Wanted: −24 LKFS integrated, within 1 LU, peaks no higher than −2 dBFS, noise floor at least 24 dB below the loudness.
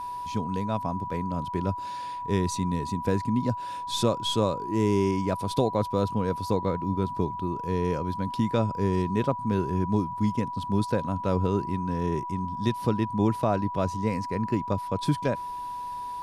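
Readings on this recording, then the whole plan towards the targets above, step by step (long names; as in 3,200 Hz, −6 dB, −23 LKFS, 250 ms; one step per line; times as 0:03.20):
crackle rate 17 per second; interfering tone 980 Hz; level of the tone −32 dBFS; integrated loudness −28.0 LKFS; sample peak −11.5 dBFS; target loudness −24.0 LKFS
→ click removal
notch filter 980 Hz, Q 30
level +4 dB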